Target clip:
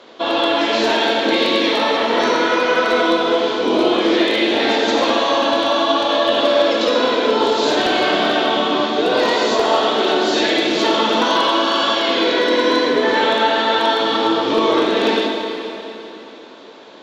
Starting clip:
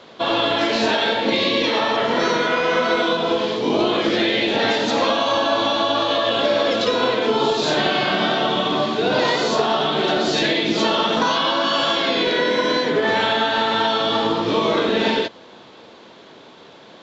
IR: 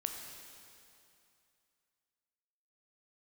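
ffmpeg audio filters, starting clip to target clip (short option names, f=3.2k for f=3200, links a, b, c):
-filter_complex "[0:a]lowshelf=f=210:t=q:w=1.5:g=-8.5,aeval=exprs='0.376*(abs(mod(val(0)/0.376+3,4)-2)-1)':c=same[a];[1:a]atrim=start_sample=2205,asetrate=34398,aresample=44100[b];[a][b]afir=irnorm=-1:irlink=0"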